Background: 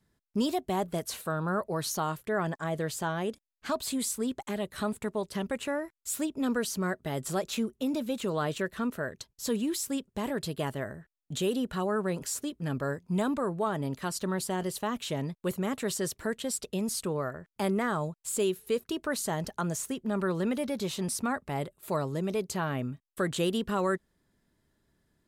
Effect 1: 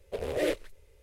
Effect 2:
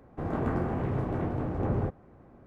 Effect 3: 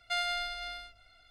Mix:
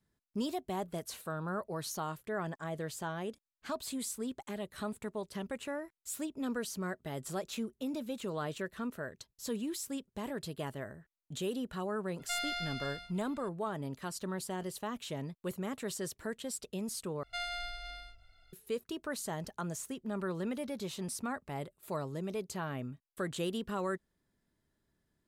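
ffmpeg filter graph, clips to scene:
-filter_complex "[3:a]asplit=2[s0][s1];[0:a]volume=0.447[s2];[s0]aeval=exprs='(tanh(22.4*val(0)+0.25)-tanh(0.25))/22.4':c=same[s3];[s1]lowshelf=f=130:g=11.5[s4];[s2]asplit=2[s5][s6];[s5]atrim=end=17.234[s7];[s4]atrim=end=1.3,asetpts=PTS-STARTPTS,volume=0.473[s8];[s6]atrim=start=18.526[s9];[s3]atrim=end=1.3,asetpts=PTS-STARTPTS,volume=0.794,afade=t=in:d=0.004:c=hsin,afade=t=out:st=1.296:d=0.004:c=hsin,adelay=12190[s10];[s7][s8]acrossfade=d=0.004:c1=hsin:c2=hsin[s11];[s11][s9]acrossfade=d=0.004:c1=hsin:c2=hsin[s12];[s12][s10]amix=inputs=2:normalize=0"

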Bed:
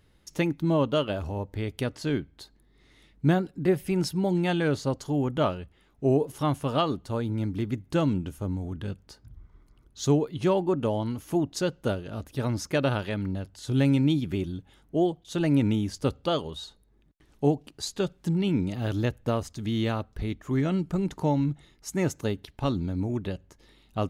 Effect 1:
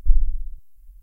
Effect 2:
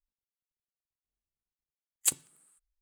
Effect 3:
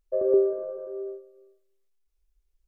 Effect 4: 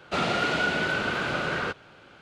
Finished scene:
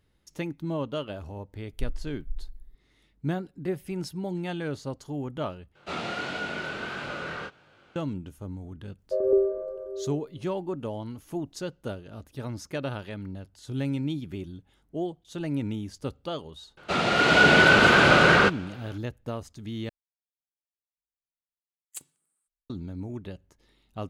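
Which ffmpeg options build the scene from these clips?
-filter_complex "[4:a]asplit=2[s0][s1];[0:a]volume=0.447[s2];[1:a]aecho=1:1:479:0.668[s3];[s0]flanger=delay=20:depth=6.2:speed=1.5[s4];[s1]dynaudnorm=f=120:g=9:m=3.98[s5];[s2]asplit=3[s6][s7][s8];[s6]atrim=end=5.754[s9];[s4]atrim=end=2.21,asetpts=PTS-STARTPTS,volume=0.631[s10];[s7]atrim=start=7.956:end=19.894[s11];[2:a]atrim=end=2.81,asetpts=PTS-STARTPTS,volume=0.2[s12];[s8]atrim=start=22.696[s13];[s3]atrim=end=1.02,asetpts=PTS-STARTPTS,volume=0.168,afade=t=in:d=0.004:c=hsin,afade=t=out:st=1.016:d=0.004:c=hsin,adelay=1730[s14];[3:a]atrim=end=2.67,asetpts=PTS-STARTPTS,volume=0.891,afade=t=in:d=0.004:c=hsin,afade=t=out:st=2.666:d=0.004:c=hsin,adelay=8990[s15];[s5]atrim=end=2.21,asetpts=PTS-STARTPTS,afade=t=in:d=0.004:c=hsin,afade=t=out:st=2.206:d=0.004:c=hsin,adelay=16770[s16];[s9][s10]acrossfade=d=0.004:c1=hsin:c2=hsin[s17];[s17][s11]acrossfade=d=0.004:c1=hsin:c2=hsin[s18];[s18][s12]acrossfade=d=0.004:c1=hsin:c2=hsin[s19];[s19][s13]acrossfade=d=0.004:c1=hsin:c2=hsin[s20];[s20][s14][s15][s16]amix=inputs=4:normalize=0"

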